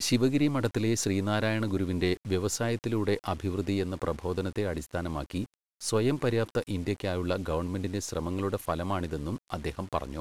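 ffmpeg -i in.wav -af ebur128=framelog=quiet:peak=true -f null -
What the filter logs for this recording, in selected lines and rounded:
Integrated loudness:
  I:         -30.4 LUFS
  Threshold: -40.4 LUFS
Loudness range:
  LRA:         3.4 LU
  Threshold: -50.8 LUFS
  LRA low:   -32.3 LUFS
  LRA high:  -28.9 LUFS
True peak:
  Peak:      -12.3 dBFS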